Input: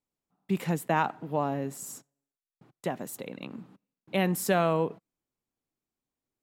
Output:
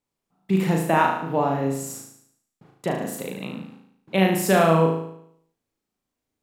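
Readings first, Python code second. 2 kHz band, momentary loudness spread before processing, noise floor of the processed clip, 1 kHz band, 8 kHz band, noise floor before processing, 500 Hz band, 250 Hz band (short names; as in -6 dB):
+7.5 dB, 16 LU, -84 dBFS, +7.5 dB, +6.0 dB, under -85 dBFS, +7.5 dB, +8.5 dB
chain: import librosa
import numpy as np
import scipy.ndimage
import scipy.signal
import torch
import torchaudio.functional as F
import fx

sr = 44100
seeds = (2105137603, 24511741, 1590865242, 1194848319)

y = fx.high_shelf(x, sr, hz=9400.0, db=-4.5)
y = fx.room_flutter(y, sr, wall_m=6.3, rt60_s=0.7)
y = F.gain(torch.from_numpy(y), 5.0).numpy()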